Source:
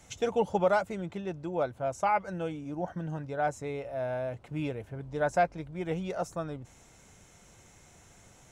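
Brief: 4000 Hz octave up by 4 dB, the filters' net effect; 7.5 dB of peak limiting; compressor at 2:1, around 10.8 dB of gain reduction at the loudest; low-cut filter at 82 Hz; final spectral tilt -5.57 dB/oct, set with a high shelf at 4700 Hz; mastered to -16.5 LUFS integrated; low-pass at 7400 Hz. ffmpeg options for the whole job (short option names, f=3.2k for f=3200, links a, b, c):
-af "highpass=82,lowpass=7.4k,equalizer=f=4k:t=o:g=8.5,highshelf=f=4.7k:g=-6.5,acompressor=threshold=-41dB:ratio=2,volume=25.5dB,alimiter=limit=-6dB:level=0:latency=1"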